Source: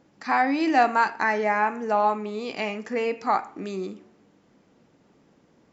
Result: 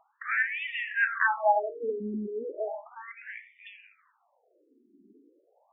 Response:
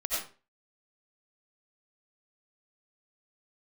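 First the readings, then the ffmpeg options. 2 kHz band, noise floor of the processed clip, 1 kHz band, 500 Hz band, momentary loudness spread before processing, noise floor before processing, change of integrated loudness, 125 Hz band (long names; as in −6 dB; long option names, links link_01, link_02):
−0.5 dB, −71 dBFS, −9.0 dB, −6.0 dB, 12 LU, −62 dBFS, −4.5 dB, can't be measured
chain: -filter_complex "[0:a]aphaser=in_gain=1:out_gain=1:delay=1.4:decay=0.37:speed=0.98:type=triangular,asplit=2[link_01][link_02];[1:a]atrim=start_sample=2205,lowpass=2600,lowshelf=frequency=490:gain=-6.5[link_03];[link_02][link_03]afir=irnorm=-1:irlink=0,volume=-14.5dB[link_04];[link_01][link_04]amix=inputs=2:normalize=0,afftfilt=real='re*between(b*sr/1024,290*pow(2600/290,0.5+0.5*sin(2*PI*0.35*pts/sr))/1.41,290*pow(2600/290,0.5+0.5*sin(2*PI*0.35*pts/sr))*1.41)':imag='im*between(b*sr/1024,290*pow(2600/290,0.5+0.5*sin(2*PI*0.35*pts/sr))/1.41,290*pow(2600/290,0.5+0.5*sin(2*PI*0.35*pts/sr))*1.41)':win_size=1024:overlap=0.75"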